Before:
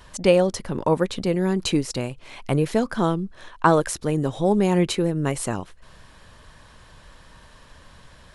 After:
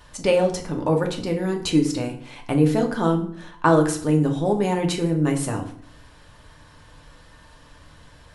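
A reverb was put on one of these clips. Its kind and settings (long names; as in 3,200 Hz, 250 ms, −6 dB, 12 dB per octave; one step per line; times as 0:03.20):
feedback delay network reverb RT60 0.58 s, low-frequency decay 1.3×, high-frequency decay 0.7×, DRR 2 dB
level −2.5 dB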